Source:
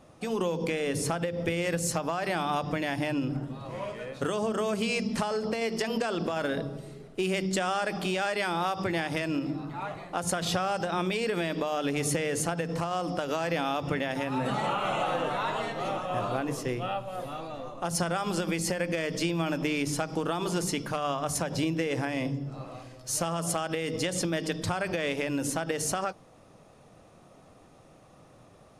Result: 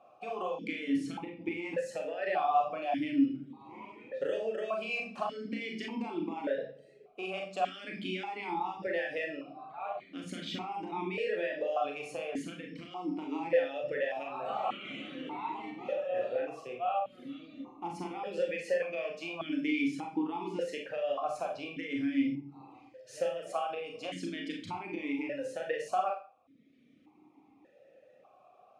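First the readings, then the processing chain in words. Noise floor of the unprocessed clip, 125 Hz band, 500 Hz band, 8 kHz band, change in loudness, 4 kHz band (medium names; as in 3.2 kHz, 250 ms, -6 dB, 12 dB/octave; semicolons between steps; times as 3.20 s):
-55 dBFS, -17.0 dB, -4.0 dB, -21.5 dB, -5.0 dB, -9.0 dB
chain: reverb removal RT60 1.2 s; Schroeder reverb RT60 0.36 s, combs from 29 ms, DRR 0.5 dB; stepped vowel filter 1.7 Hz; trim +5 dB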